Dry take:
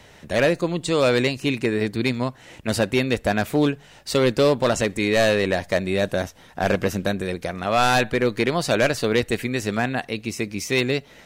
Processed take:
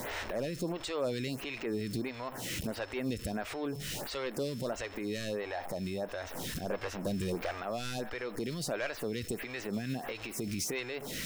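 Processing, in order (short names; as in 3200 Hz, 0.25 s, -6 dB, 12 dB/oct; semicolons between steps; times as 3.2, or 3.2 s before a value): zero-crossing step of -30.5 dBFS; 5.41–6.06 bell 800 Hz +10 dB 0.38 oct; compressor 6:1, threshold -26 dBFS, peak gain reduction 12 dB; 4.31–4.71 bell 13000 Hz +5 dB 2.5 oct; 6.7–7.58 overloaded stage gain 27 dB; limiter -24.5 dBFS, peak gain reduction 10 dB; whine 5300 Hz -53 dBFS; photocell phaser 1.5 Hz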